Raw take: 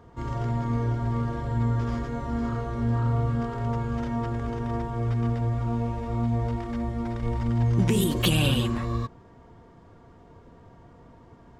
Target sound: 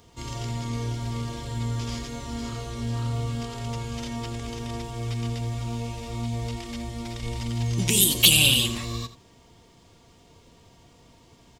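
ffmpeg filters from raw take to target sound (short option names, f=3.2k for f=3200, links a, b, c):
-filter_complex "[0:a]aexciter=amount=4.9:drive=8:freq=2.3k,asplit=2[a][b];[b]aecho=0:1:84:0.188[c];[a][c]amix=inputs=2:normalize=0,volume=-4.5dB"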